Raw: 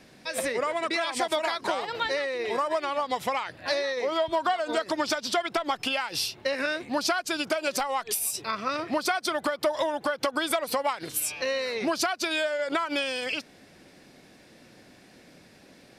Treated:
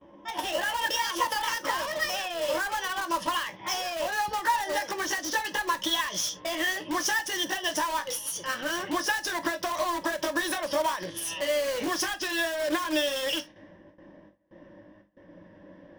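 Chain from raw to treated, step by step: pitch bend over the whole clip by +6 st ending unshifted; gate with hold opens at -45 dBFS; rippled EQ curve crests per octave 1.2, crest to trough 12 dB; level-controlled noise filter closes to 1.1 kHz, open at -22.5 dBFS; in parallel at -5.5 dB: integer overflow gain 28 dB; on the sum: reverberation, pre-delay 3 ms, DRR 9 dB; trim -2 dB

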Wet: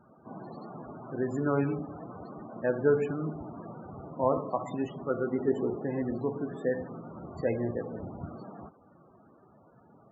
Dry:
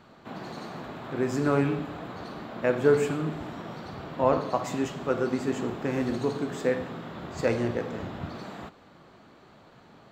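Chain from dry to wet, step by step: loudest bins only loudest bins 32; 5.35–5.84 s: peaking EQ 410 Hz +8 dB 0.63 oct; trim -3.5 dB

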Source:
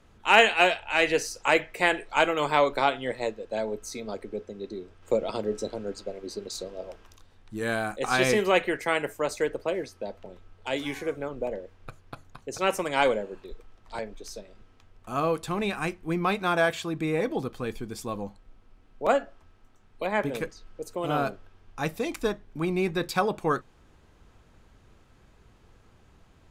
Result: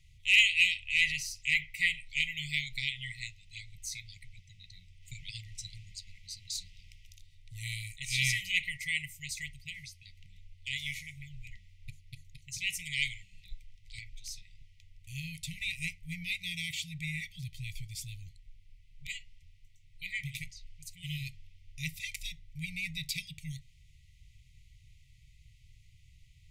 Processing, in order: 1.09–2.46 s: dynamic bell 8.1 kHz, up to -5 dB, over -45 dBFS, Q 0.71; brick-wall FIR band-stop 160–1900 Hz

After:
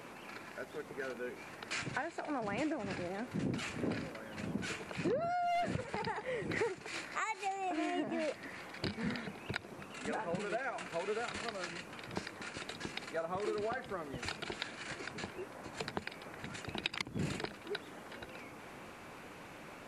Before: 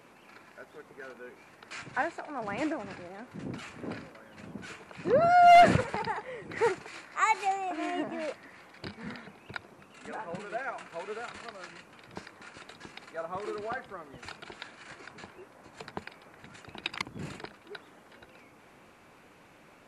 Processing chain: compression 12:1, threshold -37 dBFS, peak gain reduction 21.5 dB; dynamic bell 1.1 kHz, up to -5 dB, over -55 dBFS, Q 0.98; trim +6 dB

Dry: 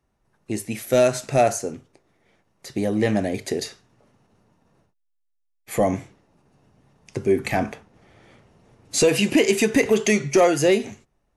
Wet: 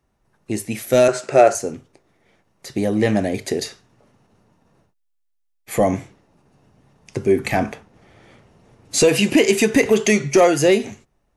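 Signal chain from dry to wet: 1.08–1.55 s: cabinet simulation 200–8500 Hz, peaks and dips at 240 Hz -7 dB, 380 Hz +8 dB, 550 Hz +5 dB, 1.4 kHz +6 dB, 3.7 kHz -5 dB, 6 kHz -4 dB; trim +3 dB

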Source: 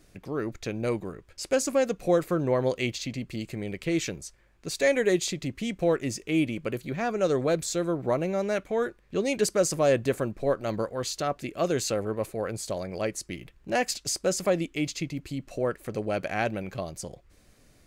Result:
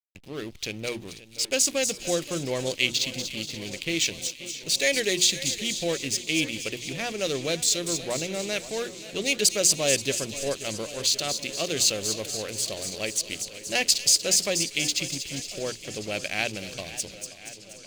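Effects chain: hum notches 60/120/180/240/300/360 Hz; hysteresis with a dead band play -37 dBFS; resonant high shelf 2 kHz +13.5 dB, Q 1.5; feedback echo behind a high-pass 239 ms, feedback 55%, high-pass 4 kHz, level -6 dB; modulated delay 530 ms, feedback 74%, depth 89 cents, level -16 dB; trim -3.5 dB

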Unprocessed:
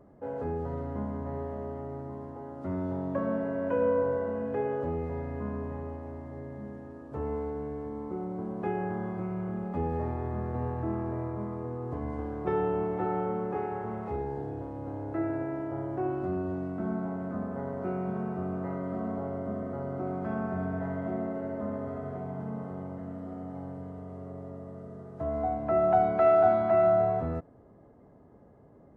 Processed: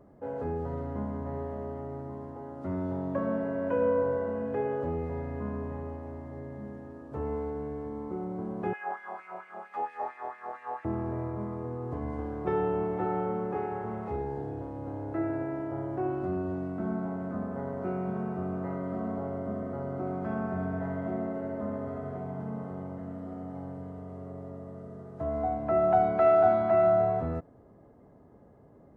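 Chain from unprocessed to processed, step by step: 8.73–10.85 s: LFO high-pass sine 4.4 Hz 690–2200 Hz

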